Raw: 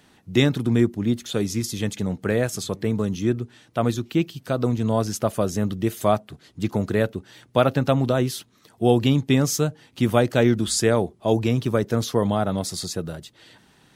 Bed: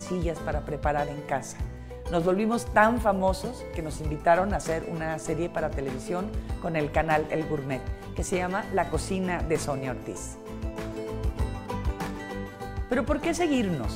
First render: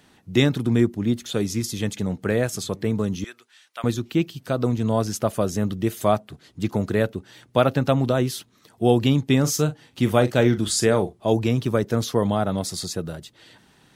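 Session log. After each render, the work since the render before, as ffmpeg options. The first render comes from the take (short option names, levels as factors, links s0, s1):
-filter_complex "[0:a]asettb=1/sr,asplit=3[s0][s1][s2];[s0]atrim=end=3.244[s3];[s1]atrim=start=3.24:end=3.84,asetpts=PTS-STARTPTS,afade=t=in:d=0.004:c=qsin,afade=t=out:st=0.596:d=0.004:c=qsin,highpass=1500[s4];[s2]atrim=start=3.836[s5];[s3][s4]acrossfade=d=0.004:c1=hsin:c2=qsin[s6];[s6][s5]acrossfade=d=0.004:c1=qsin:c2=hsin,asettb=1/sr,asplit=3[s7][s8][s9];[s7]atrim=end=9.404[s10];[s8]atrim=start=9.4:end=11.19,asetpts=PTS-STARTPTS,afade=t=in:d=0.004:c=qsin,afade=t=out:st=1.786:d=0.004:c=qsin,asplit=2[s11][s12];[s12]adelay=40,volume=0.266[s13];[s11][s13]amix=inputs=2:normalize=0,atrim=end_sample=78939[s14];[s9]atrim=start=11.186[s15];[s10][s14]acrossfade=d=0.004:c1=hsin:c2=qsin[s16];[s16][s15]acrossfade=d=0.004:c1=qsin:c2=hsin"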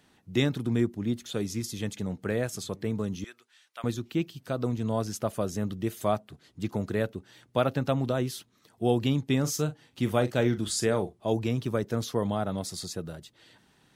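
-af "volume=0.447"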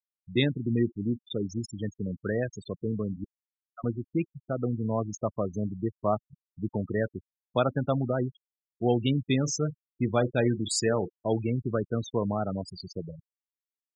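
-af "afftfilt=real='re*gte(hypot(re,im),0.0447)':imag='im*gte(hypot(re,im),0.0447)':win_size=1024:overlap=0.75,adynamicequalizer=threshold=0.00631:dfrequency=1600:dqfactor=0.7:tfrequency=1600:tqfactor=0.7:attack=5:release=100:ratio=0.375:range=2:mode=boostabove:tftype=highshelf"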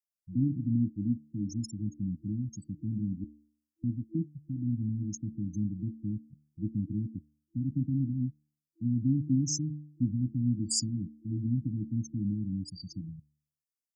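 -af "bandreject=f=74.53:t=h:w=4,bandreject=f=149.06:t=h:w=4,bandreject=f=223.59:t=h:w=4,bandreject=f=298.12:t=h:w=4,bandreject=f=372.65:t=h:w=4,bandreject=f=447.18:t=h:w=4,bandreject=f=521.71:t=h:w=4,bandreject=f=596.24:t=h:w=4,bandreject=f=670.77:t=h:w=4,bandreject=f=745.3:t=h:w=4,bandreject=f=819.83:t=h:w=4,bandreject=f=894.36:t=h:w=4,bandreject=f=968.89:t=h:w=4,bandreject=f=1043.42:t=h:w=4,bandreject=f=1117.95:t=h:w=4,bandreject=f=1192.48:t=h:w=4,bandreject=f=1267.01:t=h:w=4,bandreject=f=1341.54:t=h:w=4,bandreject=f=1416.07:t=h:w=4,bandreject=f=1490.6:t=h:w=4,bandreject=f=1565.13:t=h:w=4,bandreject=f=1639.66:t=h:w=4,bandreject=f=1714.19:t=h:w=4,bandreject=f=1788.72:t=h:w=4,bandreject=f=1863.25:t=h:w=4,bandreject=f=1937.78:t=h:w=4,bandreject=f=2012.31:t=h:w=4,bandreject=f=2086.84:t=h:w=4,bandreject=f=2161.37:t=h:w=4,bandreject=f=2235.9:t=h:w=4,bandreject=f=2310.43:t=h:w=4,bandreject=f=2384.96:t=h:w=4,afftfilt=real='re*(1-between(b*sr/4096,330,4600))':imag='im*(1-between(b*sr/4096,330,4600))':win_size=4096:overlap=0.75"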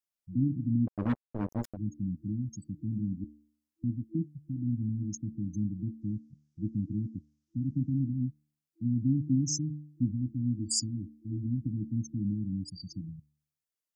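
-filter_complex "[0:a]asettb=1/sr,asplit=3[s0][s1][s2];[s0]atrim=end=0.874[s3];[s1]atrim=start=0.87:end=1.77,asetpts=PTS-STARTPTS,afade=t=in:d=0.004:c=qsin,afade=t=out:st=0.896:d=0.004:c=qsin,acrusher=bits=4:mix=0:aa=0.5[s4];[s2]atrim=start=1.766[s5];[s3][s4]acrossfade=d=0.004:c1=hsin:c2=qsin[s6];[s6][s5]acrossfade=d=0.004:c1=qsin:c2=hsin,asettb=1/sr,asplit=3[s7][s8][s9];[s7]atrim=end=6.014[s10];[s8]atrim=start=6.01:end=8.04,asetpts=PTS-STARTPTS,afade=t=in:d=0.004:c=qsin,afade=t=out:st=2.026:d=0.004:c=qsin,lowpass=f=6100:t=q:w=2.8[s11];[s9]atrim=start=8.036[s12];[s10][s11]acrossfade=d=0.004:c1=hsin:c2=qsin[s13];[s13][s12]acrossfade=d=0.004:c1=qsin:c2=hsin,asettb=1/sr,asplit=3[s14][s15][s16];[s14]atrim=end=10.114[s17];[s15]atrim=start=10.11:end=11.66,asetpts=PTS-STARTPTS,afade=t=in:d=0.004:c=qsin,afade=t=out:st=1.546:d=0.004:c=qsin,equalizer=f=170:w=3.8:g=-13[s18];[s16]atrim=start=11.656[s19];[s17][s18]acrossfade=d=0.004:c1=hsin:c2=qsin[s20];[s20][s19]acrossfade=d=0.004:c1=qsin:c2=hsin"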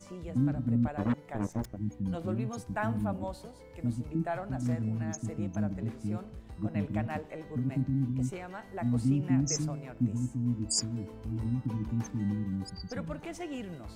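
-filter_complex "[1:a]volume=0.2[s0];[0:a][s0]amix=inputs=2:normalize=0"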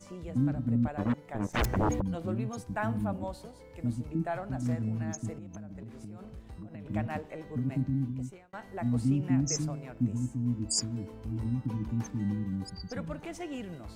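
-filter_complex "[0:a]asplit=3[s0][s1][s2];[s0]afade=t=out:st=1.53:d=0.02[s3];[s1]aeval=exprs='0.075*sin(PI/2*5.62*val(0)/0.075)':c=same,afade=t=in:st=1.53:d=0.02,afade=t=out:st=2:d=0.02[s4];[s2]afade=t=in:st=2:d=0.02[s5];[s3][s4][s5]amix=inputs=3:normalize=0,asettb=1/sr,asplit=3[s6][s7][s8];[s6]atrim=end=5.334[s9];[s7]atrim=start=5.33:end=6.86,asetpts=PTS-STARTPTS,afade=t=in:d=0.004:c=qsin,afade=t=out:st=1.526:d=0.004:c=qsin,acompressor=threshold=0.0112:ratio=16:attack=3.2:release=140:knee=1:detection=peak[s10];[s8]atrim=start=6.856[s11];[s9][s10]acrossfade=d=0.004:c1=hsin:c2=qsin[s12];[s12][s11]acrossfade=d=0.004:c1=qsin:c2=hsin,asplit=2[s13][s14];[s13]atrim=end=8.53,asetpts=PTS-STARTPTS,afade=t=out:st=7.93:d=0.6[s15];[s14]atrim=start=8.53,asetpts=PTS-STARTPTS,afade=t=in:d=0.004:c=hsin[s16];[s15][s16]concat=n=2:v=0:a=1"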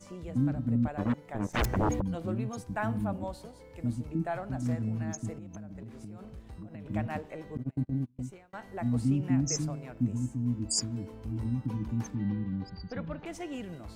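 -filter_complex "[0:a]asettb=1/sr,asplit=3[s0][s1][s2];[s0]atrim=end=7.574[s3];[s1]atrim=start=7.57:end=8.19,asetpts=PTS-STARTPTS,afade=t=in:d=0.004:c=qsin,afade=t=out:st=0.616:d=0.004:c=qsin,agate=range=0.0282:threshold=0.0316:ratio=16:release=100:detection=peak[s4];[s2]atrim=start=8.186[s5];[s3][s4]acrossfade=d=0.004:c1=hsin:c2=qsin[s6];[s6][s5]acrossfade=d=0.004:c1=qsin:c2=hsin,asettb=1/sr,asplit=3[s7][s8][s9];[s7]atrim=end=12.154[s10];[s8]atrim=start=12.15:end=13.26,asetpts=PTS-STARTPTS,afade=t=in:d=0.004:c=qsin,afade=t=out:st=1.106:d=0.004:c=qsin,lowpass=f=4300:w=0.5412,lowpass=f=4300:w=1.3066[s11];[s9]atrim=start=13.256[s12];[s10][s11]acrossfade=d=0.004:c1=hsin:c2=qsin[s13];[s13][s12]acrossfade=d=0.004:c1=qsin:c2=hsin"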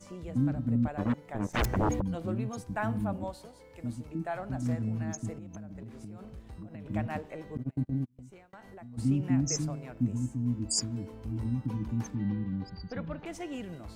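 -filter_complex "[0:a]asettb=1/sr,asplit=3[s0][s1][s2];[s0]atrim=end=3.304[s3];[s1]atrim=start=3.3:end=4.39,asetpts=PTS-STARTPTS,afade=t=in:d=0.004:c=qsin,afade=t=out:st=1.086:d=0.004:c=qsin,lowshelf=f=350:g=-6[s4];[s2]atrim=start=4.386[s5];[s3][s4]acrossfade=d=0.004:c1=hsin:c2=qsin[s6];[s6][s5]acrossfade=d=0.004:c1=qsin:c2=hsin,asplit=3[s7][s8][s9];[s7]afade=t=out:st=8.04:d=0.02[s10];[s8]acompressor=threshold=0.00501:ratio=5:attack=3.2:release=140:knee=1:detection=peak,afade=t=in:st=8.04:d=0.02,afade=t=out:st=8.97:d=0.02[s11];[s9]afade=t=in:st=8.97:d=0.02[s12];[s10][s11][s12]amix=inputs=3:normalize=0"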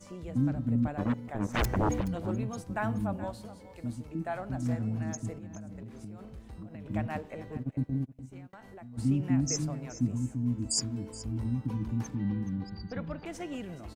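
-af "aecho=1:1:424:0.158"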